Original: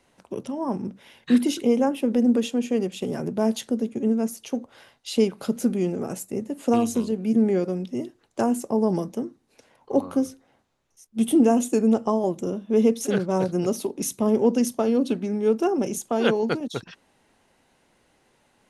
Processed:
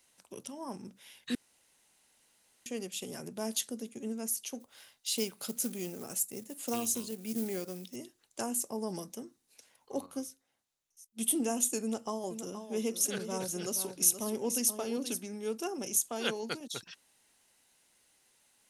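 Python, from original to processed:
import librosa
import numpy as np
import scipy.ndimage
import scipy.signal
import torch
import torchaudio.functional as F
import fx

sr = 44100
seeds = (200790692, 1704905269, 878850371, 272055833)

y = fx.quant_float(x, sr, bits=4, at=(4.6, 7.96))
y = fx.upward_expand(y, sr, threshold_db=-32.0, expansion=1.5, at=(10.06, 11.21))
y = fx.echo_single(y, sr, ms=474, db=-9.5, at=(11.83, 15.26))
y = fx.edit(y, sr, fx.room_tone_fill(start_s=1.35, length_s=1.31), tone=tone)
y = librosa.effects.preemphasis(y, coef=0.9, zi=[0.0])
y = y * 10.0 ** (4.0 / 20.0)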